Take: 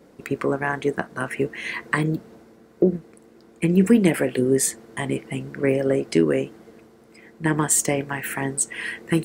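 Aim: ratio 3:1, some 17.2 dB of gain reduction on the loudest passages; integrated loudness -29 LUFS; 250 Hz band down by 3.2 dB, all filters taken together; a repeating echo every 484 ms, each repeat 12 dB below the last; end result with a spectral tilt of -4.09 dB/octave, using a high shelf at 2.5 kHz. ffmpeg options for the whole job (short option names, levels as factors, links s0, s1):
-af "equalizer=f=250:t=o:g=-4.5,highshelf=f=2500:g=8.5,acompressor=threshold=0.0251:ratio=3,aecho=1:1:484|968|1452:0.251|0.0628|0.0157,volume=1.5"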